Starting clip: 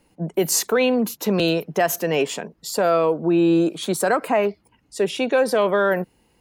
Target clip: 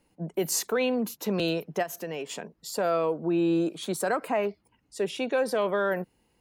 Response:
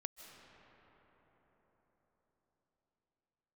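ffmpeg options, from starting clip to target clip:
-filter_complex "[0:a]asplit=3[a][b][c];[a]afade=t=out:st=1.82:d=0.02[d];[b]acompressor=threshold=-24dB:ratio=6,afade=t=in:st=1.82:d=0.02,afade=t=out:st=2.29:d=0.02[e];[c]afade=t=in:st=2.29:d=0.02[f];[d][e][f]amix=inputs=3:normalize=0,volume=-7.5dB"

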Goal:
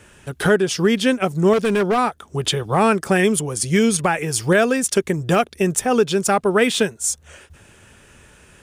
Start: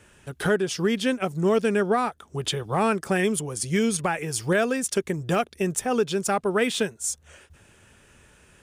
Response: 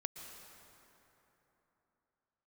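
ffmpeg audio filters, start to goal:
-filter_complex "[0:a]asettb=1/sr,asplit=3[a][b][c];[a]atrim=end=1.534[d];[b]atrim=start=1.53:end=1.98,asetpts=PTS-STARTPTS,afade=t=in:d=0.004:c=qsin,afade=t=out:st=0.446:d=0.004:c=qsin,volume=21dB,asoftclip=hard,volume=-21dB[e];[c]atrim=start=1.976[f];[d][e]acrossfade=d=0.004:c1=hsin:c2=qsin[g];[g][f]acrossfade=d=0.004:c1=qsin:c2=hsin,volume=6.5dB"

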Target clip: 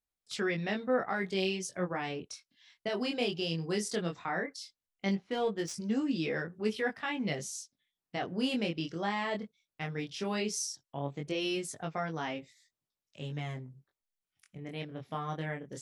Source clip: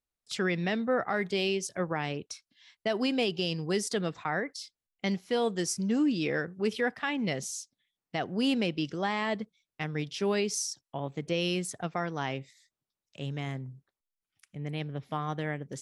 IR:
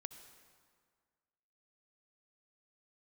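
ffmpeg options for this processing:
-filter_complex "[0:a]asettb=1/sr,asplit=3[a][b][c];[a]atrim=end=5.134[d];[b]atrim=start=5.13:end=5.74,asetpts=PTS-STARTPTS,afade=t=in:d=0.004:c=qsin,afade=t=out:st=0.606:d=0.004:c=qsin,adynamicsmooth=sensitivity=4.5:basefreq=2.9k[e];[c]atrim=start=5.736[f];[d][e]acrossfade=d=0.004:c1=hsin:c2=qsin[g];[g][f]acrossfade=d=0.004:c1=qsin:c2=hsin,flanger=delay=18.5:depth=6.3:speed=0.16"

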